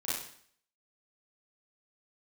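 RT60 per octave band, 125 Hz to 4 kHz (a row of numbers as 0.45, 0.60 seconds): 0.60, 0.60, 0.55, 0.60, 0.60, 0.60 seconds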